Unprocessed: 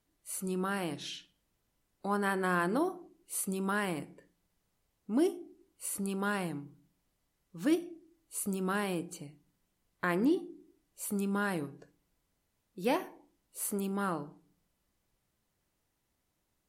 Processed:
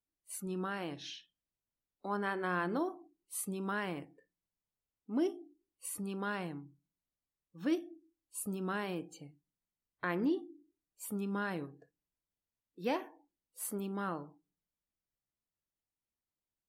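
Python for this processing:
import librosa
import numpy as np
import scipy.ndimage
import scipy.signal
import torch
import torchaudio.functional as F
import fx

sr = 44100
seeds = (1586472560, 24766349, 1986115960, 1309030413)

y = fx.noise_reduce_blind(x, sr, reduce_db=15)
y = y * 10.0 ** (-4.0 / 20.0)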